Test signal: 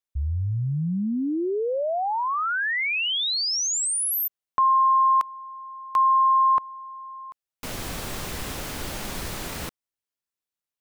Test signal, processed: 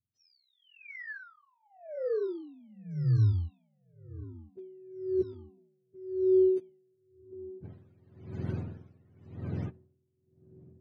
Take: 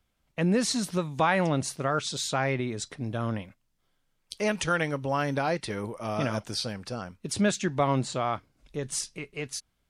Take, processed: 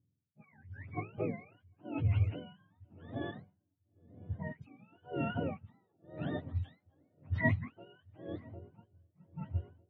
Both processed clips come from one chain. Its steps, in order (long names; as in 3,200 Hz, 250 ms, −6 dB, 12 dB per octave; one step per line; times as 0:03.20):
frequency axis turned over on the octave scale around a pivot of 630 Hz
parametric band 960 Hz −8.5 dB 1.6 octaves
feedback echo with a long and a short gap by turns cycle 1,003 ms, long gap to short 3 to 1, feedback 58%, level −20.5 dB
low-pass that shuts in the quiet parts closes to 400 Hz, open at −19.5 dBFS
tremolo with a sine in dB 0.94 Hz, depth 30 dB